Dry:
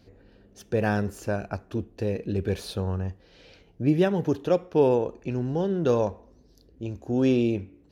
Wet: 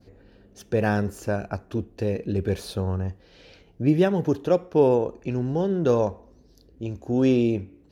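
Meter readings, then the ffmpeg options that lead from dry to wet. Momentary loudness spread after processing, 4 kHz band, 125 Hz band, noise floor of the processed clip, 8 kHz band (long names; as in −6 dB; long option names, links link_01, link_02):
11 LU, 0.0 dB, +2.0 dB, −56 dBFS, can't be measured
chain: -af "adynamicequalizer=threshold=0.00355:dfrequency=3000:dqfactor=0.95:tfrequency=3000:tqfactor=0.95:attack=5:release=100:ratio=0.375:range=2:mode=cutabove:tftype=bell,volume=2dB"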